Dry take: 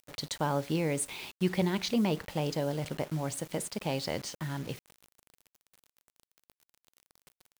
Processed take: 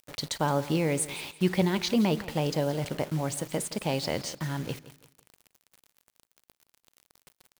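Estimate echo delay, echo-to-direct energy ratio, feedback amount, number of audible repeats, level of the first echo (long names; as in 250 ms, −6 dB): 169 ms, −16.0 dB, 31%, 2, −16.5 dB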